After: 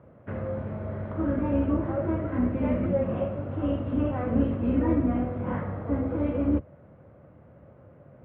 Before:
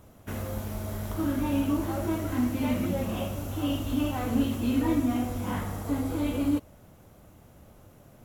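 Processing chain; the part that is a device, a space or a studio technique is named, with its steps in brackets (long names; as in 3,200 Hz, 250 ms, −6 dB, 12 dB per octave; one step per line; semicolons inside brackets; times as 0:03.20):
sub-octave bass pedal (sub-octave generator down 2 octaves, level 0 dB; loudspeaker in its box 74–2,000 Hz, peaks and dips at 140 Hz +4 dB, 540 Hz +8 dB, 810 Hz −3 dB)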